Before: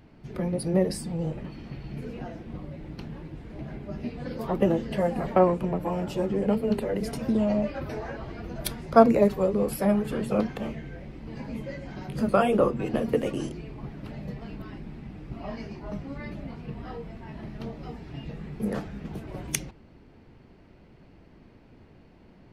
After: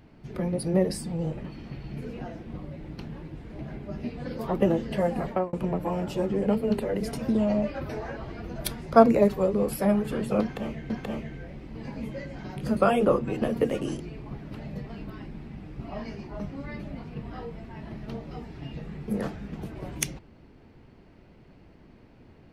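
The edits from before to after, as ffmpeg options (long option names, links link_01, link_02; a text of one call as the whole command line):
ffmpeg -i in.wav -filter_complex "[0:a]asplit=3[link_01][link_02][link_03];[link_01]atrim=end=5.53,asetpts=PTS-STARTPTS,afade=type=out:start_time=5.22:duration=0.31[link_04];[link_02]atrim=start=5.53:end=10.902,asetpts=PTS-STARTPTS,afade=type=in:duration=0.004:curve=hsin[link_05];[link_03]atrim=start=10.418[link_06];[link_04][link_05]concat=n=2:v=0:a=1[link_07];[link_07][link_06]acrossfade=duration=0.004:curve1=hsin:curve2=hsin" out.wav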